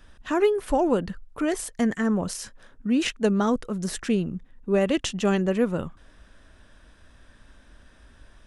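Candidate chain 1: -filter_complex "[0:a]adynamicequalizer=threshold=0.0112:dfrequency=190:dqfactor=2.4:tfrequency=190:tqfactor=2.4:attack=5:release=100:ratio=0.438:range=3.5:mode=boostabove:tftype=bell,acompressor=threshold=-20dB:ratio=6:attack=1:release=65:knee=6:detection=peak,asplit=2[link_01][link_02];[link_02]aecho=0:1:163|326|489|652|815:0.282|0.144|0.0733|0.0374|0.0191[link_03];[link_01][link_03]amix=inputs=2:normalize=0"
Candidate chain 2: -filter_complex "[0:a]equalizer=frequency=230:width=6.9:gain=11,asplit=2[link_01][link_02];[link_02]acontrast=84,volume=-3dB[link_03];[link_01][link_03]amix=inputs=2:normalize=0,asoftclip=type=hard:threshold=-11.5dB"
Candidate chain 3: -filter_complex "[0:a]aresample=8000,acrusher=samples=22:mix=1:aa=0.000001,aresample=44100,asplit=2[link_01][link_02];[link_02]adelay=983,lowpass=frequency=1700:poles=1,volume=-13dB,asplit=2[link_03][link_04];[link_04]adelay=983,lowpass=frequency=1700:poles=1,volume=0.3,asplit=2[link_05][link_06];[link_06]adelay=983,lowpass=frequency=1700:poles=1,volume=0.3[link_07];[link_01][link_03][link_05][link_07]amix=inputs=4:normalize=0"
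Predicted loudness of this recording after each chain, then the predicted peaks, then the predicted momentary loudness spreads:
−27.0, −18.0, −27.0 LKFS; −14.5, −11.5, −9.0 dBFS; 7, 9, 14 LU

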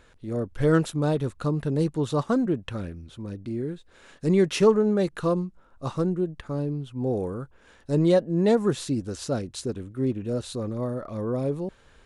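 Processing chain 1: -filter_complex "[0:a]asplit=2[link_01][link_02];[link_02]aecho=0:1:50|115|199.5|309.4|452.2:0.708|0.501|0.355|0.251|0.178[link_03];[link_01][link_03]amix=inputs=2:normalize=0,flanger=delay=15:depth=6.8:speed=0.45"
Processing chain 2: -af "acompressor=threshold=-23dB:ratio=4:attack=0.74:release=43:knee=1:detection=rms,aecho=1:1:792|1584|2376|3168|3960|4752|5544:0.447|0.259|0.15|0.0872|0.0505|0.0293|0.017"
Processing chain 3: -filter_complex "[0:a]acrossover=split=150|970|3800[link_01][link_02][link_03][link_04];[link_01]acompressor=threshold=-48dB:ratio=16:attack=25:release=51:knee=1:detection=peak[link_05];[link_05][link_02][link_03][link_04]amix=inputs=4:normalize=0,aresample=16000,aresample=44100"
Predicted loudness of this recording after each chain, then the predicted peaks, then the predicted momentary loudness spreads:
−26.0, −29.5, −27.0 LKFS; −6.0, −17.0, −6.5 dBFS; 13, 5, 14 LU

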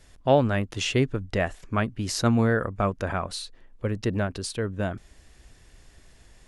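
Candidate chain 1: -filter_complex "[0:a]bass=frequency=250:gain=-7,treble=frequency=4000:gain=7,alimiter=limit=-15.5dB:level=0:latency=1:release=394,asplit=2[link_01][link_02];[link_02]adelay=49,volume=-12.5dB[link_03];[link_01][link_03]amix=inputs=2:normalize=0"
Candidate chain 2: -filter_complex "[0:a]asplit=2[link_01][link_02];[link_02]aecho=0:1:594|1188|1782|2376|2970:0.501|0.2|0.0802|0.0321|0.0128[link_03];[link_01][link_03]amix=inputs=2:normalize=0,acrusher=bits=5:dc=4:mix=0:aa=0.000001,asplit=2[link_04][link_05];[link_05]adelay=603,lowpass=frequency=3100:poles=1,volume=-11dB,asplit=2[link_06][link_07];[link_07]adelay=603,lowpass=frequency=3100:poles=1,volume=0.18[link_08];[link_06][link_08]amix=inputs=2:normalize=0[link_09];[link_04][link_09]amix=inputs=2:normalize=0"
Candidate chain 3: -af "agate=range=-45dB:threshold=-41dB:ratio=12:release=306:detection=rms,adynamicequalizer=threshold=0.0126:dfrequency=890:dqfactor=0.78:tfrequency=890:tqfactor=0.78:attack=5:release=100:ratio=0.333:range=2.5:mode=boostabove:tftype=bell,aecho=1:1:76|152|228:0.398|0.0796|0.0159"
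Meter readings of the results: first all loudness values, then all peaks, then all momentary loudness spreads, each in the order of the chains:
−30.0, −24.5, −24.0 LKFS; −15.0, −8.0, −5.0 dBFS; 7, 14, 11 LU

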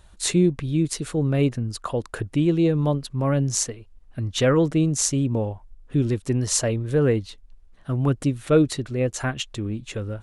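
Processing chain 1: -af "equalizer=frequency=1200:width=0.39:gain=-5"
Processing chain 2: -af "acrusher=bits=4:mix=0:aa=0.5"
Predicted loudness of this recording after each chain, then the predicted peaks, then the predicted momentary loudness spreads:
−24.5, −23.0 LKFS; −4.5, −3.5 dBFS; 10, 10 LU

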